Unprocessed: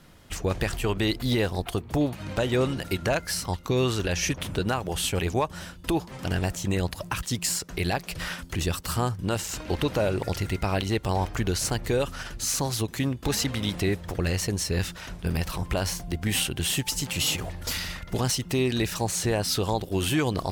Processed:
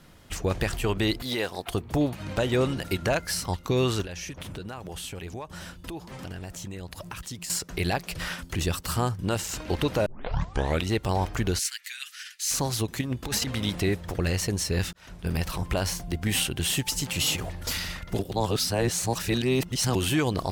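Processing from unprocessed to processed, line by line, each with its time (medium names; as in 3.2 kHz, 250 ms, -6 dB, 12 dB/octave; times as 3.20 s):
1.22–1.68 s: high-pass 520 Hz 6 dB/octave
4.02–7.50 s: compression 4:1, threshold -35 dBFS
10.06 s: tape start 0.83 s
11.59–12.51 s: steep high-pass 1.7 kHz
13.01–13.48 s: compressor with a negative ratio -28 dBFS, ratio -0.5
14.93–15.48 s: fade in equal-power
18.19–19.95 s: reverse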